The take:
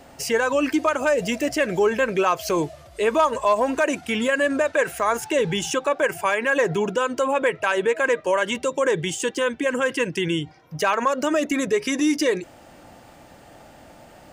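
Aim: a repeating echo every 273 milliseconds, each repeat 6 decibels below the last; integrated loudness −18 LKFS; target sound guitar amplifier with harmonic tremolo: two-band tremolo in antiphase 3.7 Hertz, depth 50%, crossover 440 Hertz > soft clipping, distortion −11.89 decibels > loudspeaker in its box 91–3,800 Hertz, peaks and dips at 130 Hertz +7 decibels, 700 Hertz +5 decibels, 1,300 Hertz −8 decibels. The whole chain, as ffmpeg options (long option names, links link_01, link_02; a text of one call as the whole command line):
ffmpeg -i in.wav -filter_complex "[0:a]aecho=1:1:273|546|819|1092|1365|1638:0.501|0.251|0.125|0.0626|0.0313|0.0157,acrossover=split=440[link_01][link_02];[link_01]aeval=exprs='val(0)*(1-0.5/2+0.5/2*cos(2*PI*3.7*n/s))':channel_layout=same[link_03];[link_02]aeval=exprs='val(0)*(1-0.5/2-0.5/2*cos(2*PI*3.7*n/s))':channel_layout=same[link_04];[link_03][link_04]amix=inputs=2:normalize=0,asoftclip=threshold=-21dB,highpass=91,equalizer=frequency=130:width_type=q:width=4:gain=7,equalizer=frequency=700:width_type=q:width=4:gain=5,equalizer=frequency=1300:width_type=q:width=4:gain=-8,lowpass=frequency=3800:width=0.5412,lowpass=frequency=3800:width=1.3066,volume=9dB" out.wav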